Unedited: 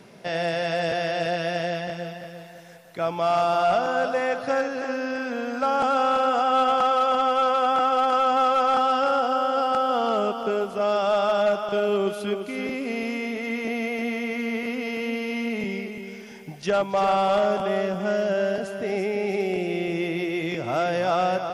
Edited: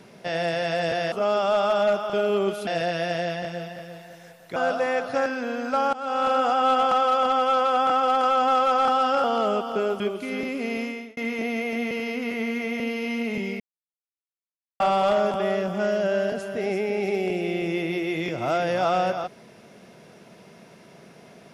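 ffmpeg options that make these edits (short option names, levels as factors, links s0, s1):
-filter_complex "[0:a]asplit=13[s0][s1][s2][s3][s4][s5][s6][s7][s8][s9][s10][s11][s12];[s0]atrim=end=1.122[s13];[s1]atrim=start=10.708:end=12.262[s14];[s2]atrim=start=1.118:end=3.012[s15];[s3]atrim=start=3.898:end=4.602[s16];[s4]atrim=start=5.148:end=5.82,asetpts=PTS-STARTPTS,afade=t=out:st=0.668:d=0.004:c=hsin:silence=0.0944061[s17];[s5]atrim=start=5.82:end=9.132,asetpts=PTS-STARTPTS,afade=t=in:d=0.36:silence=0.0944061[s18];[s6]atrim=start=9.948:end=10.712[s19];[s7]atrim=start=12.258:end=13.43,asetpts=PTS-STARTPTS,afade=t=out:st=0.802:d=0.37[s20];[s8]atrim=start=13.43:end=14.172,asetpts=PTS-STARTPTS,afade=t=in:d=0.004:c=hsin[s21];[s9]atrim=start=14.168:end=15.062,asetpts=PTS-STARTPTS,areverse[s22];[s10]atrim=start=15.058:end=15.86,asetpts=PTS-STARTPTS,afade=t=out:st=0.798:d=0.004:c=hsin[s23];[s11]atrim=start=15.86:end=17.06,asetpts=PTS-STARTPTS,volume=0[s24];[s12]atrim=start=17.06,asetpts=PTS-STARTPTS,afade=t=in:d=0.004:c=hsin[s25];[s13][s14]acrossfade=d=0.004:c1=hsin:c2=hsin[s26];[s26][s15]acrossfade=d=0.004:c1=hsin:c2=hsin[s27];[s27][s16]acrossfade=d=0.004:c1=hsin:c2=hsin[s28];[s17][s18]concat=n=2:v=0:a=1[s29];[s28][s29]acrossfade=d=0.004:c1=hsin:c2=hsin[s30];[s30][s19]acrossfade=d=0.004:c1=hsin:c2=hsin[s31];[s20][s21]concat=n=2:v=0:a=1[s32];[s31][s32]acrossfade=d=0.004:c1=hsin:c2=hsin[s33];[s33][s22]acrossfade=d=0.004:c1=hsin:c2=hsin[s34];[s23][s24][s25]concat=n=3:v=0:a=1[s35];[s34][s35]acrossfade=d=0.004:c1=hsin:c2=hsin"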